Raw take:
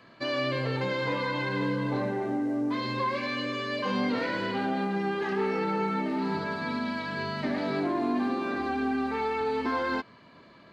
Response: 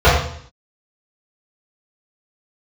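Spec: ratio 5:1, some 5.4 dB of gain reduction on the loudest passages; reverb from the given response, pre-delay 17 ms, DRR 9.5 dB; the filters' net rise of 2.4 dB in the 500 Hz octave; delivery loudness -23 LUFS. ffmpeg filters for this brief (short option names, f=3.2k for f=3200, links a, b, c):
-filter_complex "[0:a]equalizer=f=500:t=o:g=3,acompressor=threshold=-29dB:ratio=5,asplit=2[a][b];[1:a]atrim=start_sample=2205,adelay=17[c];[b][c]afir=irnorm=-1:irlink=0,volume=-38.5dB[d];[a][d]amix=inputs=2:normalize=0,volume=9.5dB"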